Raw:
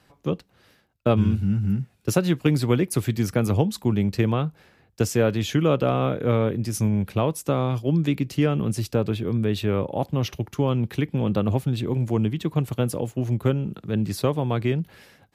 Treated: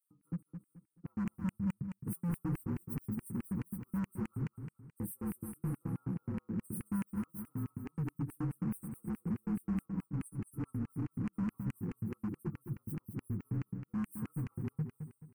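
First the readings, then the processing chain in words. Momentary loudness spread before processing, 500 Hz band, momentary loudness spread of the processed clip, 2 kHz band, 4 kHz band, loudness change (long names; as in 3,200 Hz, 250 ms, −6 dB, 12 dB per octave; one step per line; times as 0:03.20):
5 LU, −28.0 dB, 6 LU, −20.0 dB, below −30 dB, −15.5 dB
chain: partials spread apart or drawn together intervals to 116%
brick-wall band-stop 1,400–8,100 Hz
high-pass filter 71 Hz 6 dB per octave
comb filter 6.2 ms, depth 57%
in parallel at −1 dB: brickwall limiter −20 dBFS, peak gain reduction 11.5 dB
on the sum: downward compressor 1.5 to 1, threshold −23 dBFS, peak gain reduction 4.5 dB
guitar amp tone stack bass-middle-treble 10-0-1
auto-filter high-pass square 4.7 Hz 210–2,700 Hz
hard clipping −38.5 dBFS, distortion −7 dB
phaser with its sweep stopped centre 1,500 Hz, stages 4
on a send: repeating echo 215 ms, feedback 33%, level −8 dB
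on the sum: level +7.5 dB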